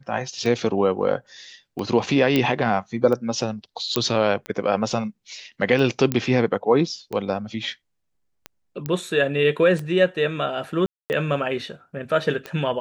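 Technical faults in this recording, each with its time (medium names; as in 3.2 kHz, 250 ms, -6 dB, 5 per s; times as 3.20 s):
tick 45 rpm -17 dBFS
2.36 s: pop -7 dBFS
3.96 s: pop -5 dBFS
6.12 s: pop -8 dBFS
8.86 s: pop -14 dBFS
10.86–11.10 s: dropout 239 ms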